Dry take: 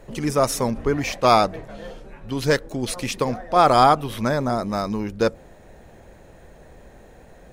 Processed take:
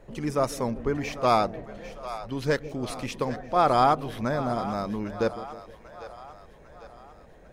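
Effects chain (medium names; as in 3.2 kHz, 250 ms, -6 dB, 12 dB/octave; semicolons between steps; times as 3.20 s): treble shelf 4.2 kHz -7.5 dB; on a send: two-band feedback delay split 510 Hz, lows 156 ms, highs 798 ms, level -13.5 dB; on the sum: trim -5.5 dB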